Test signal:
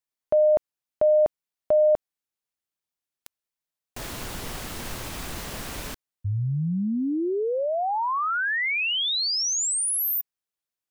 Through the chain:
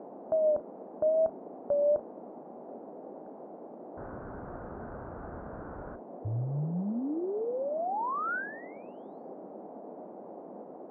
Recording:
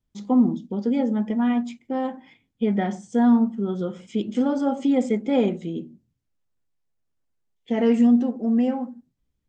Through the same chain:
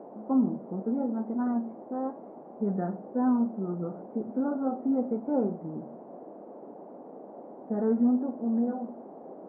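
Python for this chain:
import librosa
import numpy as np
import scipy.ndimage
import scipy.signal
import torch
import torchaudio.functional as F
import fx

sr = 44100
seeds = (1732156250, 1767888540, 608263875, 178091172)

y = scipy.signal.sosfilt(scipy.signal.butter(2, 41.0, 'highpass', fs=sr, output='sos'), x)
y = fx.vibrato(y, sr, rate_hz=1.0, depth_cents=94.0)
y = scipy.signal.sosfilt(scipy.signal.cheby1(5, 1.0, 1500.0, 'lowpass', fs=sr, output='sos'), y)
y = fx.dmg_noise_band(y, sr, seeds[0], low_hz=200.0, high_hz=750.0, level_db=-39.0)
y = fx.doubler(y, sr, ms=34.0, db=-14.0)
y = F.gain(torch.from_numpy(y), -6.5).numpy()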